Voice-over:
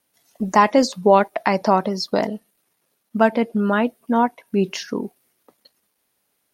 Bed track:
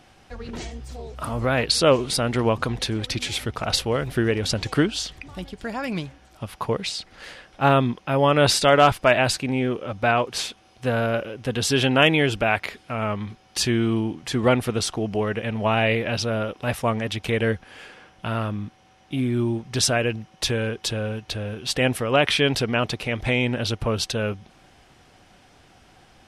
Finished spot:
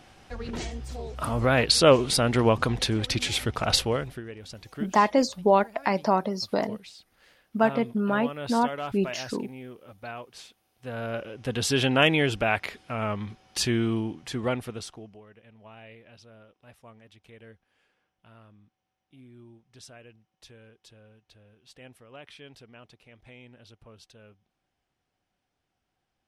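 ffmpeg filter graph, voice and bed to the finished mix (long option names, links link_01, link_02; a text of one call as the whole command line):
ffmpeg -i stem1.wav -i stem2.wav -filter_complex "[0:a]adelay=4400,volume=-6dB[link_01];[1:a]volume=15dB,afade=type=out:start_time=3.79:duration=0.42:silence=0.11885,afade=type=in:start_time=10.75:duration=0.8:silence=0.177828,afade=type=out:start_time=13.77:duration=1.44:silence=0.0630957[link_02];[link_01][link_02]amix=inputs=2:normalize=0" out.wav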